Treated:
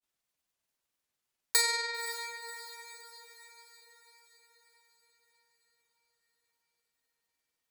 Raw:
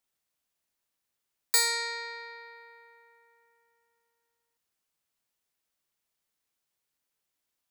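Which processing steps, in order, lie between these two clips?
granular cloud 100 ms, grains 20 per second, spray 12 ms, pitch spread up and down by 0 semitones
feedback delay with all-pass diffusion 539 ms, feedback 53%, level −13 dB

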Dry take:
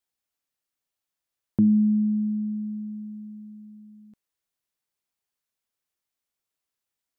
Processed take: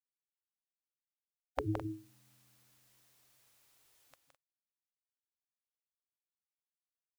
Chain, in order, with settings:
gate on every frequency bin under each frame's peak −30 dB weak
loudspeakers that aren't time-aligned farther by 57 metres −6 dB, 72 metres −12 dB
level +16 dB

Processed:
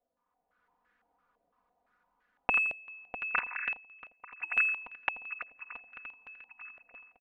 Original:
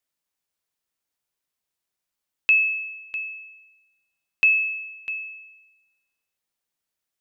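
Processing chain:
0:03.34–0:04.53: three sine waves on the formant tracks
feedback echo with a long and a short gap by turns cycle 1,187 ms, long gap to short 3 to 1, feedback 53%, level −16 dB
in parallel at −7 dB: soft clipping −24.5 dBFS, distortion −6 dB
on the sum: comb filter 4.1 ms, depth 90%
automatic gain control gain up to 8 dB
repeating echo 84 ms, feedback 20%, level −13 dB
0:06.48–0:06.82: gain on a spectral selection 320–700 Hz −28 dB
low-pass on a step sequencer 5.9 Hz 650–1,600 Hz

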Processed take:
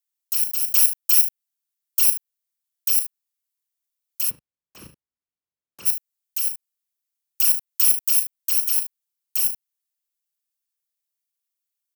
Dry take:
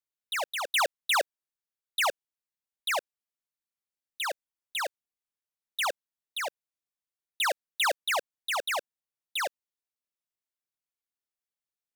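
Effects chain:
samples in bit-reversed order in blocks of 64 samples
ambience of single reflections 36 ms −9.5 dB, 60 ms −16.5 dB, 74 ms −13 dB
dynamic equaliser 6,200 Hz, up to −5 dB, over −42 dBFS, Q 0.85
high-pass filter 61 Hz
spectral tilt +4 dB per octave, from 0:04.29 −3 dB per octave, from 0:05.85 +4 dB per octave
level −4.5 dB

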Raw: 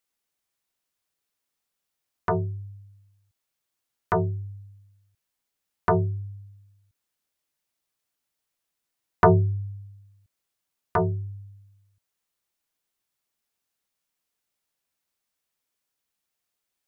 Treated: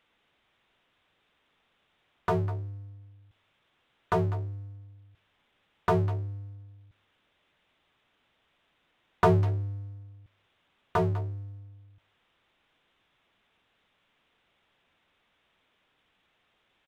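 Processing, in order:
downsampling to 8,000 Hz
far-end echo of a speakerphone 200 ms, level −16 dB
power curve on the samples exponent 0.7
level −6 dB

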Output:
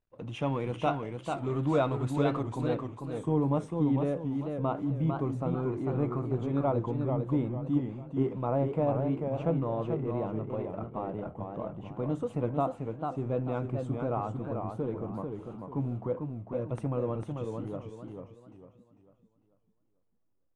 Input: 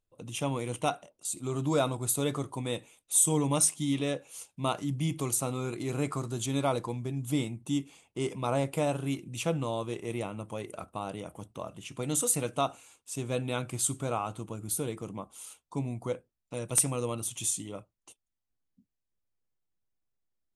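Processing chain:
mu-law and A-law mismatch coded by mu
noise gate −54 dBFS, range −11 dB
low-pass filter 2,200 Hz 12 dB per octave, from 0:02.43 1,000 Hz
feedback echo with a swinging delay time 445 ms, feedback 34%, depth 136 cents, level −5 dB

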